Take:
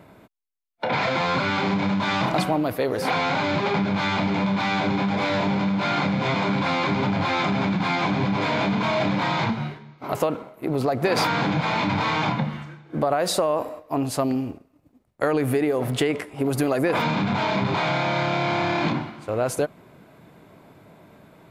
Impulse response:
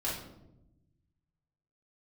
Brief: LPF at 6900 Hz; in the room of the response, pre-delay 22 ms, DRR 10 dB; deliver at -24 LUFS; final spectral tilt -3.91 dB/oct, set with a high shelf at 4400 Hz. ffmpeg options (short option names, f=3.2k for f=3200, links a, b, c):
-filter_complex "[0:a]lowpass=6.9k,highshelf=f=4.4k:g=7,asplit=2[a][b];[1:a]atrim=start_sample=2205,adelay=22[c];[b][c]afir=irnorm=-1:irlink=0,volume=-15dB[d];[a][d]amix=inputs=2:normalize=0,volume=-1.5dB"